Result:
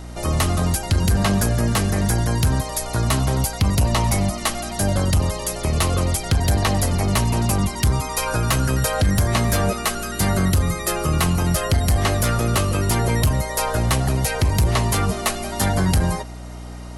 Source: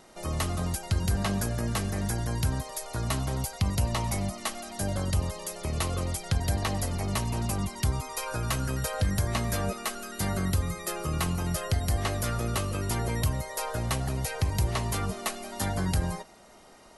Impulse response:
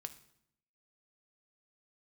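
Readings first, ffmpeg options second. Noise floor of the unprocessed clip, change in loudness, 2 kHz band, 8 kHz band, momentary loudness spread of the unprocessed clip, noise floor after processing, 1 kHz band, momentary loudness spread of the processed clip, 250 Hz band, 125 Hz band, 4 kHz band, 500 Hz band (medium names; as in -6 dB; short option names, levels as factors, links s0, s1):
-53 dBFS, +9.5 dB, +10.0 dB, +9.5 dB, 5 LU, -33 dBFS, +10.0 dB, 5 LU, +10.0 dB, +9.5 dB, +9.5 dB, +10.0 dB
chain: -af "aeval=exprs='val(0)+0.00631*(sin(2*PI*60*n/s)+sin(2*PI*2*60*n/s)/2+sin(2*PI*3*60*n/s)/3+sin(2*PI*4*60*n/s)/4+sin(2*PI*5*60*n/s)/5)':c=same,aeval=exprs='0.188*sin(PI/2*1.58*val(0)/0.188)':c=same,volume=1.41"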